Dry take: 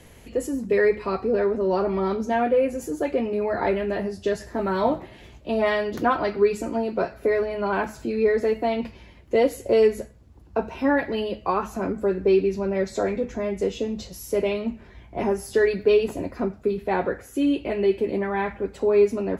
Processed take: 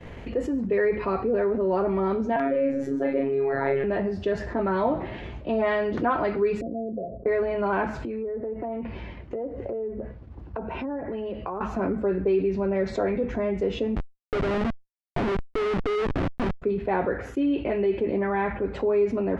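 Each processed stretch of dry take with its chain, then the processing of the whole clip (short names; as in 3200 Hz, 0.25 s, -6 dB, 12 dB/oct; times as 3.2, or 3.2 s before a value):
2.36–3.84 robotiser 137 Hz + doubler 36 ms -2 dB
6.61–7.26 compressor 3:1, threshold -35 dBFS + rippled Chebyshev low-pass 710 Hz, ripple 6 dB
8.02–11.61 treble ducked by the level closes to 750 Hz, closed at -18.5 dBFS + compressor 4:1, threshold -37 dBFS
13.96–16.62 LPF 1600 Hz + Schmitt trigger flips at -29.5 dBFS
whole clip: LPF 2400 Hz 12 dB/oct; expander -43 dBFS; fast leveller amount 50%; gain -5.5 dB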